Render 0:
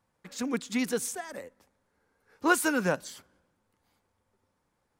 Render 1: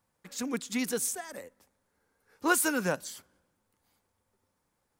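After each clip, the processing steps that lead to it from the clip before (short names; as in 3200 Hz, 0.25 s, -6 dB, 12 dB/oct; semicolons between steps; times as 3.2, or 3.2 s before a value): high shelf 6400 Hz +9 dB; gain -2.5 dB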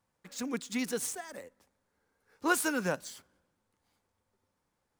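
median filter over 3 samples; gain -2 dB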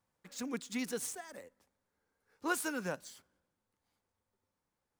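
vocal rider within 4 dB 2 s; gain -6.5 dB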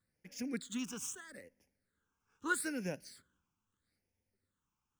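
phaser stages 8, 0.78 Hz, lowest notch 550–1200 Hz; gain +1 dB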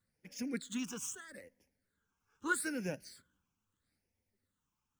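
bin magnitudes rounded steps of 15 dB; gain +1 dB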